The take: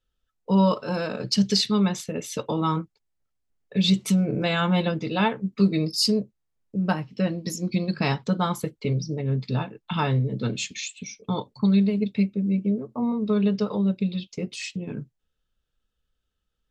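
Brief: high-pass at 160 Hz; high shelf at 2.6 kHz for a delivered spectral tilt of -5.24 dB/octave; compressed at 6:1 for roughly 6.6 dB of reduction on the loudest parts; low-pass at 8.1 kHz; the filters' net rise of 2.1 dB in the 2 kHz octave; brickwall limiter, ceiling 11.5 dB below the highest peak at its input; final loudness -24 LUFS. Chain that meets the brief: high-pass 160 Hz; low-pass 8.1 kHz; peaking EQ 2 kHz +5 dB; treble shelf 2.6 kHz -4.5 dB; compression 6:1, threshold -23 dBFS; trim +9.5 dB; peak limiter -15 dBFS

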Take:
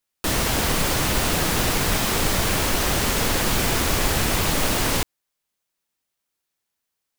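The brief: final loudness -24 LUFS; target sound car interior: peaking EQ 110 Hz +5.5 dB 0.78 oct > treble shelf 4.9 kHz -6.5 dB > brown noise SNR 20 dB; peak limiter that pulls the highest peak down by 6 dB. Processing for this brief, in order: peak limiter -13 dBFS; peaking EQ 110 Hz +5.5 dB 0.78 oct; treble shelf 4.9 kHz -6.5 dB; brown noise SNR 20 dB

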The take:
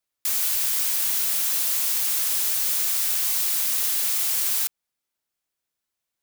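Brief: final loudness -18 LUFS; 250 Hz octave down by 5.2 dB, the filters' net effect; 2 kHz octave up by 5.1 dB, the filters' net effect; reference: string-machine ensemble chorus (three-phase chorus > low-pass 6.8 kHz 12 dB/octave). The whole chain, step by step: peaking EQ 250 Hz -7.5 dB; peaking EQ 2 kHz +6.5 dB; three-phase chorus; low-pass 6.8 kHz 12 dB/octave; trim +13.5 dB

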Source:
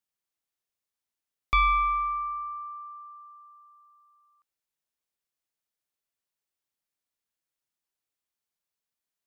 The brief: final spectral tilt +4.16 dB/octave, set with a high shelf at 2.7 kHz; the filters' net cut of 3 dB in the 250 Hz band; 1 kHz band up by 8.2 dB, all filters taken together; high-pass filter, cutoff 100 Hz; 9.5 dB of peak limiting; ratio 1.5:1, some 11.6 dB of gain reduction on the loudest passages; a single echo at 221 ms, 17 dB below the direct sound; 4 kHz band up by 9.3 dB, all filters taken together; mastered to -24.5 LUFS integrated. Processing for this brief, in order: high-pass 100 Hz; peaking EQ 250 Hz -4.5 dB; peaking EQ 1 kHz +8.5 dB; treble shelf 2.7 kHz +7.5 dB; peaking EQ 4 kHz +5 dB; compression 1.5:1, threshold -45 dBFS; peak limiter -24.5 dBFS; delay 221 ms -17 dB; trim +8.5 dB

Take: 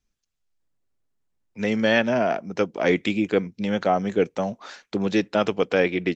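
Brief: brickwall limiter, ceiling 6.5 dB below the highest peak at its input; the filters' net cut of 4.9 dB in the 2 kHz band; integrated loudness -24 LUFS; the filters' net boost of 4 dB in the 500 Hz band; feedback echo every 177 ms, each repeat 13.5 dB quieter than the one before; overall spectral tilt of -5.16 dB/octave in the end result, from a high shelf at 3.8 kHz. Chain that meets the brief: peaking EQ 500 Hz +5 dB; peaking EQ 2 kHz -8 dB; treble shelf 3.8 kHz +6 dB; peak limiter -11.5 dBFS; feedback delay 177 ms, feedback 21%, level -13.5 dB; trim -0.5 dB

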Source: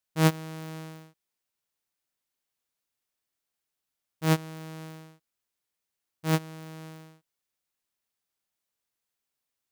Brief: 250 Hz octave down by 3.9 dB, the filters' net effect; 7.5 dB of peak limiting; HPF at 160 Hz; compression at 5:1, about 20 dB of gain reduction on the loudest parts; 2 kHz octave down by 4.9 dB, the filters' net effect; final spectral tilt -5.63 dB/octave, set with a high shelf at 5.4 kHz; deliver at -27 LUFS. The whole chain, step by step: high-pass 160 Hz; peaking EQ 250 Hz -4 dB; peaking EQ 2 kHz -5.5 dB; treble shelf 5.4 kHz -6.5 dB; compression 5:1, threshold -42 dBFS; trim +24.5 dB; peak limiter -11 dBFS

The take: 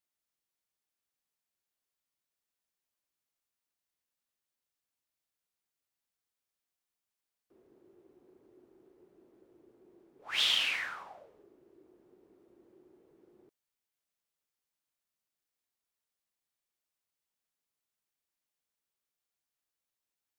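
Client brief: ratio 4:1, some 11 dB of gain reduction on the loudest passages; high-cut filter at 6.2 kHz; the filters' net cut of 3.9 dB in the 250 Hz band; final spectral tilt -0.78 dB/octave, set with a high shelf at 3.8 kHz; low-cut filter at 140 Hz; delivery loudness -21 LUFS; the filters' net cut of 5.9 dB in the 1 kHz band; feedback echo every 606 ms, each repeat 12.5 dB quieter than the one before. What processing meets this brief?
high-pass 140 Hz; low-pass 6.2 kHz; peaking EQ 250 Hz -5 dB; peaking EQ 1 kHz -7 dB; treble shelf 3.8 kHz -7.5 dB; compression 4:1, threshold -42 dBFS; feedback delay 606 ms, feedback 24%, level -12.5 dB; trim +24 dB

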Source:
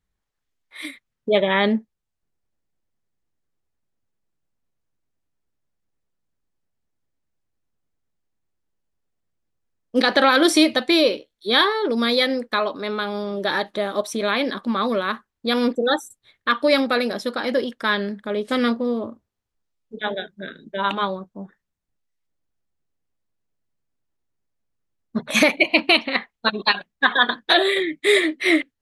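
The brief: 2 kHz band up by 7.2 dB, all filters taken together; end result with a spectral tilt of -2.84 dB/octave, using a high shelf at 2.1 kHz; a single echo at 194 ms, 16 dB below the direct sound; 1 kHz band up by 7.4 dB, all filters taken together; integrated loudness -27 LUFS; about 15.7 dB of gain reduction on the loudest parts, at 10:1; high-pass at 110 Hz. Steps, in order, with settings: high-pass 110 Hz; peaking EQ 1 kHz +7 dB; peaking EQ 2 kHz +4.5 dB; treble shelf 2.1 kHz +4 dB; compression 10:1, threshold -22 dBFS; delay 194 ms -16 dB

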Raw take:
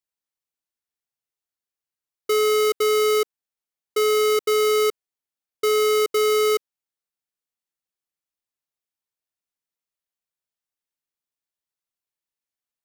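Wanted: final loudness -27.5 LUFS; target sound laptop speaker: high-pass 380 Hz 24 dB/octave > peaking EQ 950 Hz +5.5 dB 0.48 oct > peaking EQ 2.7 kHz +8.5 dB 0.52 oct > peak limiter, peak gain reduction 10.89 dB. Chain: high-pass 380 Hz 24 dB/octave; peaking EQ 950 Hz +5.5 dB 0.48 oct; peaking EQ 2.7 kHz +8.5 dB 0.52 oct; trim +3.5 dB; peak limiter -21 dBFS

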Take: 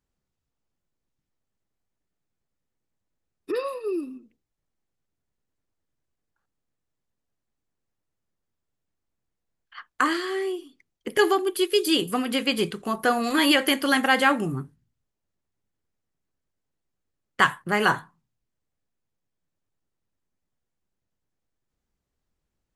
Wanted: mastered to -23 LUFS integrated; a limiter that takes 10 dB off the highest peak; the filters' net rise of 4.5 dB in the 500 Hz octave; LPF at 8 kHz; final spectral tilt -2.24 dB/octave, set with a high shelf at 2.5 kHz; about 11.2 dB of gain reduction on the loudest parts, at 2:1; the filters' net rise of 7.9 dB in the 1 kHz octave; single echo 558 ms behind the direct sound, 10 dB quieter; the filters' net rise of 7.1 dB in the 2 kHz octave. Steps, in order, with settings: low-pass 8 kHz; peaking EQ 500 Hz +4 dB; peaking EQ 1 kHz +7.5 dB; peaking EQ 2 kHz +7.5 dB; treble shelf 2.5 kHz -3.5 dB; compression 2:1, threshold -29 dBFS; peak limiter -18 dBFS; delay 558 ms -10 dB; trim +7 dB

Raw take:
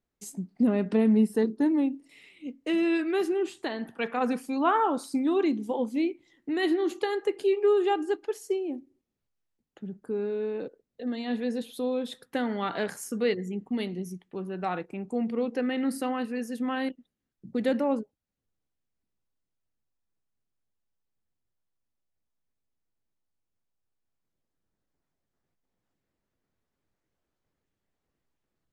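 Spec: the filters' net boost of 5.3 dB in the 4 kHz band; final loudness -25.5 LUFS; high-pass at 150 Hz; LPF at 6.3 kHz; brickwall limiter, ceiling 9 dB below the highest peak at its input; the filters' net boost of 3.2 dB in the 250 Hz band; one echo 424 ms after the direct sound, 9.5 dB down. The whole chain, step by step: high-pass 150 Hz; low-pass 6.3 kHz; peaking EQ 250 Hz +4.5 dB; peaking EQ 4 kHz +7.5 dB; peak limiter -20 dBFS; delay 424 ms -9.5 dB; trim +3.5 dB

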